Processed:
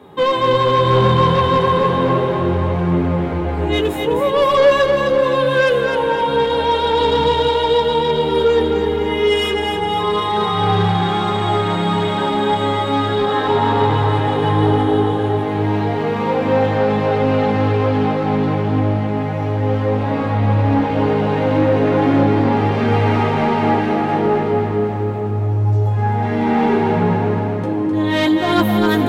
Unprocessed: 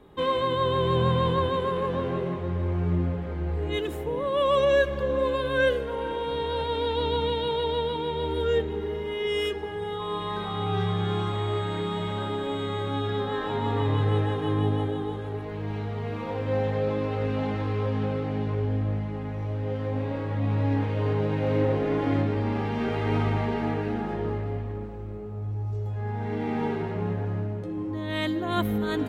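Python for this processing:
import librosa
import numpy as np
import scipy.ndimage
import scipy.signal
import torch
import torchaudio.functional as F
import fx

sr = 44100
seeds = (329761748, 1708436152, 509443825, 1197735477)

p1 = scipy.signal.sosfilt(scipy.signal.butter(4, 100.0, 'highpass', fs=sr, output='sos'), x)
p2 = fx.peak_eq(p1, sr, hz=840.0, db=5.0, octaves=0.41)
p3 = fx.rider(p2, sr, range_db=10, speed_s=2.0)
p4 = p2 + (p3 * 10.0 ** (0.0 / 20.0))
p5 = fx.chorus_voices(p4, sr, voices=2, hz=0.37, base_ms=12, depth_ms=4.0, mix_pct=35)
p6 = 10.0 ** (-17.0 / 20.0) * np.tanh(p5 / 10.0 ** (-17.0 / 20.0))
p7 = p6 + fx.echo_feedback(p6, sr, ms=257, feedback_pct=55, wet_db=-5.5, dry=0)
y = p7 * 10.0 ** (8.0 / 20.0)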